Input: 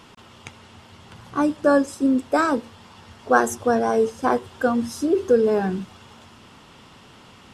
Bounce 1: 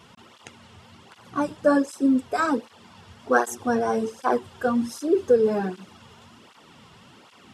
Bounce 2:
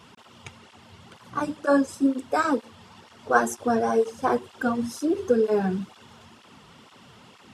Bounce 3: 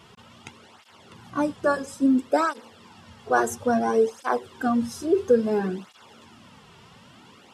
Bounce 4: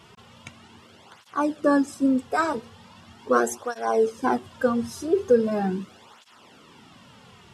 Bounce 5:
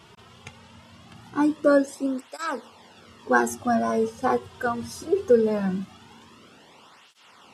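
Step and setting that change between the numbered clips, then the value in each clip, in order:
cancelling through-zero flanger, nulls at: 1.3 Hz, 2.1 Hz, 0.59 Hz, 0.4 Hz, 0.21 Hz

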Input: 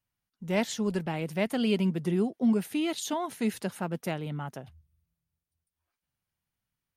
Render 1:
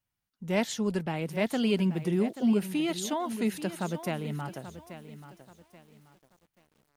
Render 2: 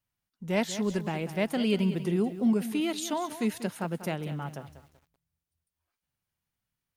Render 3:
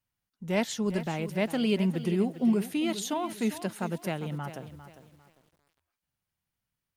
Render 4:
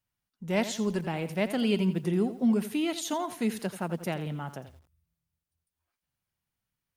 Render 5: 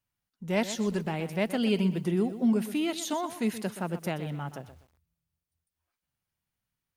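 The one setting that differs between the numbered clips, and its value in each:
bit-crushed delay, time: 833 ms, 191 ms, 401 ms, 85 ms, 124 ms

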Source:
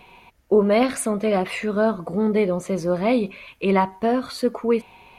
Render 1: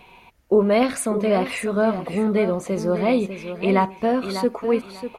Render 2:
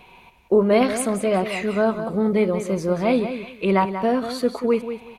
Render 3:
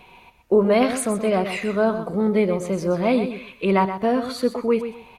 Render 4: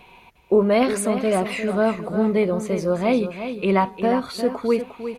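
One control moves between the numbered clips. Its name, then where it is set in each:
feedback delay, time: 596 ms, 186 ms, 126 ms, 354 ms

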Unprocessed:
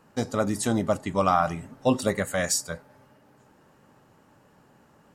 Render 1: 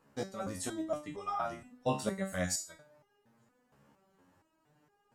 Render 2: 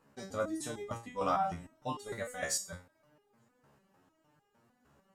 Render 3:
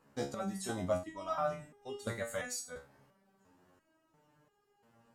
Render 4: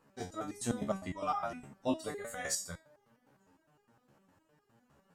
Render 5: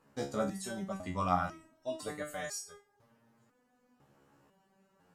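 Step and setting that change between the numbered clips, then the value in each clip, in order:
resonator arpeggio, rate: 4.3 Hz, 6.6 Hz, 2.9 Hz, 9.8 Hz, 2 Hz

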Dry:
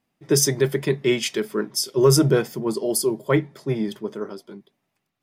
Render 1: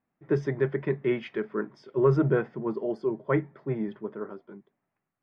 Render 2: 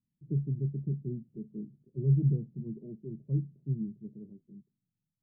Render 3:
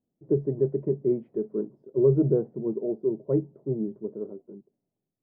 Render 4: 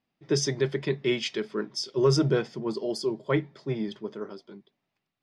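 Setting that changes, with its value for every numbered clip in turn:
four-pole ladder low-pass, frequency: 2.2 kHz, 220 Hz, 620 Hz, 6 kHz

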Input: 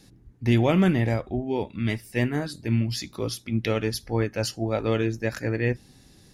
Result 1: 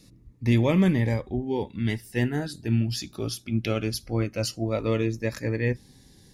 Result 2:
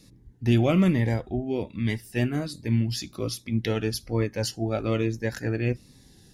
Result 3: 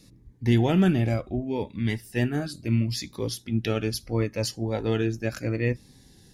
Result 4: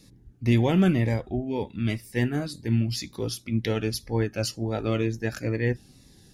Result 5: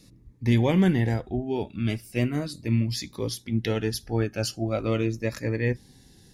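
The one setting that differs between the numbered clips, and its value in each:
Shepard-style phaser, rate: 0.21 Hz, 1.2 Hz, 0.71 Hz, 2 Hz, 0.39 Hz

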